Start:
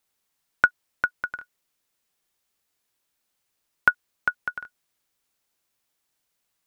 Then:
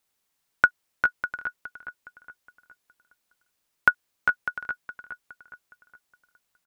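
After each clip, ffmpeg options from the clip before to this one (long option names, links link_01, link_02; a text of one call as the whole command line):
ffmpeg -i in.wav -filter_complex "[0:a]asplit=2[link_01][link_02];[link_02]adelay=415,lowpass=frequency=3900:poles=1,volume=-9.5dB,asplit=2[link_03][link_04];[link_04]adelay=415,lowpass=frequency=3900:poles=1,volume=0.45,asplit=2[link_05][link_06];[link_06]adelay=415,lowpass=frequency=3900:poles=1,volume=0.45,asplit=2[link_07][link_08];[link_08]adelay=415,lowpass=frequency=3900:poles=1,volume=0.45,asplit=2[link_09][link_10];[link_10]adelay=415,lowpass=frequency=3900:poles=1,volume=0.45[link_11];[link_01][link_03][link_05][link_07][link_09][link_11]amix=inputs=6:normalize=0" out.wav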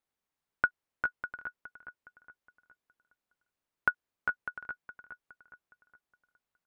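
ffmpeg -i in.wav -af "highshelf=frequency=2800:gain=-12,volume=-6dB" out.wav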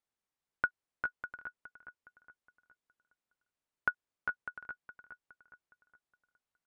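ffmpeg -i in.wav -af "aresample=22050,aresample=44100,volume=-4dB" out.wav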